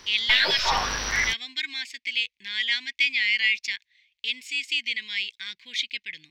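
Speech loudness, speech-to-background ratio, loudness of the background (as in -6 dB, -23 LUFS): -26.0 LUFS, -2.0 dB, -24.0 LUFS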